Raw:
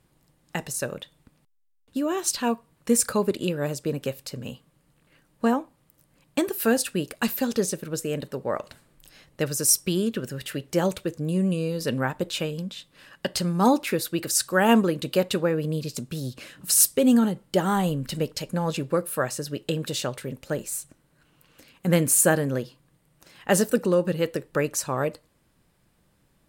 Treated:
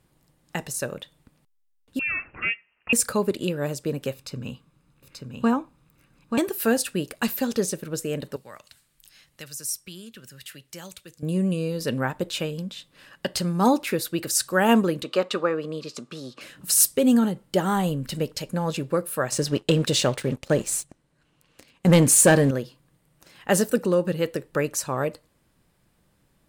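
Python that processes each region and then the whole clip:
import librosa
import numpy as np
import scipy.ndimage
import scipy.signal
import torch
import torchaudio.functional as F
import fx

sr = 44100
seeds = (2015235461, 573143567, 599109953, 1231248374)

y = fx.chain(x, sr, fx.highpass(hz=320.0, slope=12),
    fx.freq_invert(carrier_hz=3000), at=(1.99, 2.93))
y = fx.chain(y, sr, fx.peak_eq(hz=13000.0, db=-8.5, octaves=1.2),
    fx.comb(ms=0.8, depth=0.4),
    fx.echo_single(ms=884, db=-4.5), at=(4.14, 6.38))
y = fx.chain(y, sr, fx.tone_stack(knobs='5-5-5'),
    fx.band_squash(depth_pct=40), at=(8.36, 11.23))
y = fx.chain(y, sr, fx.bandpass_edges(low_hz=280.0, high_hz=5900.0),
    fx.peak_eq(hz=1200.0, db=12.0, octaves=0.31), at=(15.03, 16.41))
y = fx.chain(y, sr, fx.lowpass(hz=9300.0, slope=12),
    fx.peak_eq(hz=1400.0, db=-3.0, octaves=0.38),
    fx.leveller(passes=2), at=(19.32, 22.51))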